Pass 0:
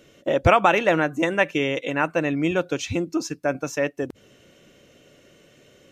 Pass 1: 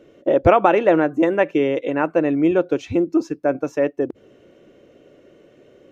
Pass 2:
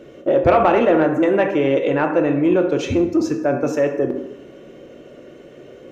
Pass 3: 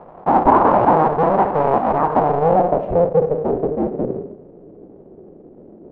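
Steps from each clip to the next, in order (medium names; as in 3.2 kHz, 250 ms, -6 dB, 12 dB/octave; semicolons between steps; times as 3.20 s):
FFT filter 180 Hz 0 dB, 350 Hz +9 dB, 7.7 kHz -12 dB; trim -1 dB
in parallel at -2 dB: compressor with a negative ratio -25 dBFS, ratio -1; on the sum: plate-style reverb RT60 0.94 s, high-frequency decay 0.6×, DRR 4 dB; saturation -3 dBFS, distortion -22 dB; trim -1.5 dB
cycle switcher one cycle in 2, inverted; low-pass sweep 940 Hz -> 370 Hz, 2.08–4.12 s; trim -2.5 dB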